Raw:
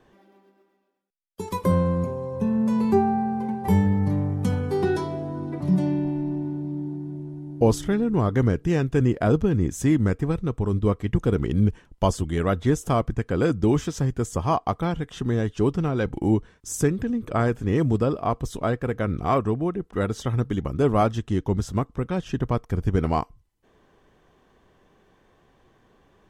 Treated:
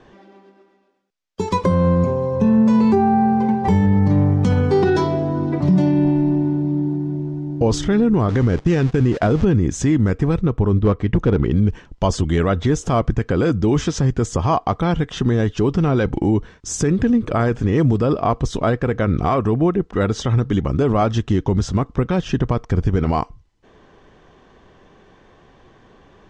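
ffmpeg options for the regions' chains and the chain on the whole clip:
-filter_complex "[0:a]asettb=1/sr,asplit=3[s0][s1][s2];[s0]atrim=end=8.284[s3];[s1]atrim=start=8.28:end=9.45,asetpts=PTS-STARTPTS,afade=t=in:d=0.004:c=qsin,afade=t=out:st=1.166:d=0.004:c=qsin,aeval=exprs='val(0)+0.5*0.0211*sgn(val(0))':c=same,agate=range=0.1:threshold=0.0316:ratio=16:release=100:detection=peak[s4];[s2]atrim=start=9.446[s5];[s3][s4]acrossfade=d=0.004:c1=hsin:c2=qsin[s6];[s6][s5]acrossfade=d=0.004:c1=qsin:c2=hsin,asettb=1/sr,asplit=3[s7][s8][s9];[s7]atrim=end=10.414[s10];[s8]atrim=start=10.41:end=11.52,asetpts=PTS-STARTPTS,afade=t=in:d=0.004:c=qsin,afade=t=out:st=1.106:d=0.004:c=qsin,lowpass=f=2700:p=1,asoftclip=type=hard:threshold=0.2[s11];[s9]atrim=start=11.516[s12];[s10][s11]acrossfade=d=0.004:c1=hsin:c2=qsin[s13];[s13][s12]acrossfade=d=0.004:c1=qsin:c2=hsin,lowpass=f=6700:w=0.5412,lowpass=f=6700:w=1.3066,alimiter=level_in=7.08:limit=0.891:release=50:level=0:latency=1,volume=0.447"

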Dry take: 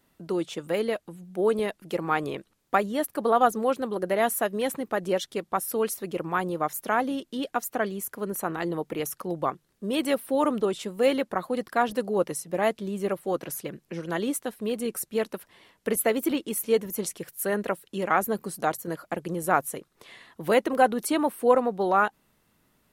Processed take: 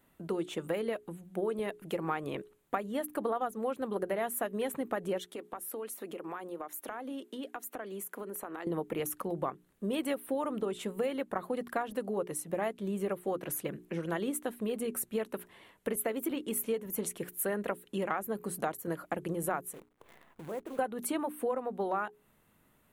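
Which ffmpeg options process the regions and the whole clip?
-filter_complex "[0:a]asettb=1/sr,asplit=3[s0][s1][s2];[s0]atrim=end=5.254[s3];[s1]atrim=start=5.25:end=8.67,asetpts=PTS-STARTPTS,afade=t=in:d=0.004:c=qsin,afade=t=out:st=3.416:d=0.004:c=qsin,highpass=f=230:w=0.5412,highpass=f=230:w=1.3066,acompressor=threshold=0.0158:ratio=8:attack=3.2:release=140:knee=1:detection=peak[s4];[s2]atrim=start=8.666[s5];[s3][s4]acrossfade=d=0.004:c1=hsin:c2=qsin[s6];[s6][s5]acrossfade=d=0.004:c1=qsin:c2=hsin,asettb=1/sr,asplit=3[s7][s8][s9];[s7]atrim=end=19.734[s10];[s8]atrim=start=19.73:end=20.79,asetpts=PTS-STARTPTS,afade=t=in:d=0.004:c=qsin,afade=t=out:st=1.056:d=0.004:c=qsin,lowpass=1200,acompressor=threshold=0.00316:ratio=2:attack=3.2:release=140:knee=1:detection=peak,acrusher=bits=9:dc=4:mix=0:aa=0.000001[s11];[s9]atrim=start=20.786[s12];[s10][s11]acrossfade=d=0.004:c1=hsin:c2=qsin[s13];[s13][s12]acrossfade=d=0.004:c1=qsin:c2=hsin,equalizer=f=5100:w=1.7:g=-10.5,acompressor=threshold=0.0355:ratio=10,bandreject=f=60:t=h:w=6,bandreject=f=120:t=h:w=6,bandreject=f=180:t=h:w=6,bandreject=f=240:t=h:w=6,bandreject=f=300:t=h:w=6,bandreject=f=360:t=h:w=6,bandreject=f=420:t=h:w=6"

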